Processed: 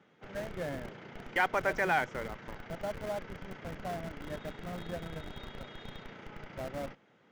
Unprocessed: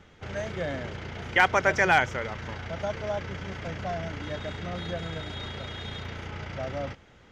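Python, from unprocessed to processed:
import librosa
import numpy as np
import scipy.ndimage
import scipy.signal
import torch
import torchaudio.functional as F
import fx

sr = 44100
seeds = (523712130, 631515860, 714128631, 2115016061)

p1 = scipy.signal.sosfilt(scipy.signal.butter(4, 150.0, 'highpass', fs=sr, output='sos'), x)
p2 = fx.high_shelf(p1, sr, hz=3800.0, db=-11.0)
p3 = fx.schmitt(p2, sr, flips_db=-31.0)
p4 = p2 + (p3 * librosa.db_to_amplitude(-4.5))
y = p4 * librosa.db_to_amplitude(-7.5)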